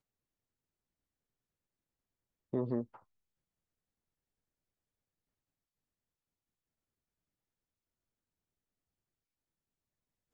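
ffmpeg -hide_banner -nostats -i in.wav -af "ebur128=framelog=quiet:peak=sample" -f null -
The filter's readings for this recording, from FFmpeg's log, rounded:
Integrated loudness:
  I:         -37.3 LUFS
  Threshold: -48.5 LUFS
Loudness range:
  LRA:         1.9 LU
  Threshold: -64.5 LUFS
  LRA low:   -46.2 LUFS
  LRA high:  -44.3 LUFS
Sample peak:
  Peak:      -22.7 dBFS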